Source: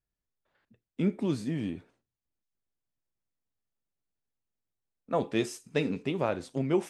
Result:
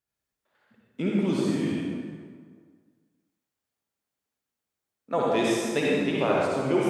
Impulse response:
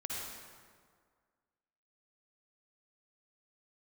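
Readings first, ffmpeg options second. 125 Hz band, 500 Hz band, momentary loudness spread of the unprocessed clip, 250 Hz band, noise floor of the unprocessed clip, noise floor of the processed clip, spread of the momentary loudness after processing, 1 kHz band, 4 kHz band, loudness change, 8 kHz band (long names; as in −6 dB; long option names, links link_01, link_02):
+2.0 dB, +6.5 dB, 6 LU, +5.0 dB, below −85 dBFS, below −85 dBFS, 9 LU, +8.0 dB, +7.5 dB, +5.5 dB, +7.0 dB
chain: -filter_complex "[0:a]highpass=frequency=250:poles=1[link_01];[1:a]atrim=start_sample=2205[link_02];[link_01][link_02]afir=irnorm=-1:irlink=0,volume=6.5dB"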